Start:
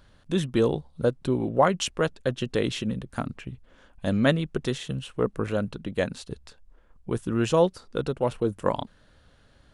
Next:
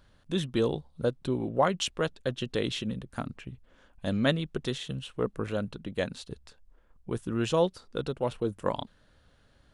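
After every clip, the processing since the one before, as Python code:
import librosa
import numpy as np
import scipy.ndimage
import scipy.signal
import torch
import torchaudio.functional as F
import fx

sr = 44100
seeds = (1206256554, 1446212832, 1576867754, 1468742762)

y = fx.dynamic_eq(x, sr, hz=3600.0, q=2.0, threshold_db=-49.0, ratio=4.0, max_db=5)
y = y * 10.0 ** (-4.5 / 20.0)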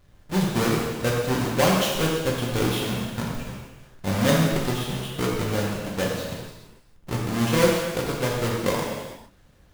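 y = fx.halfwave_hold(x, sr)
y = fx.rev_gated(y, sr, seeds[0], gate_ms=480, shape='falling', drr_db=-3.5)
y = y * 10.0 ** (-3.0 / 20.0)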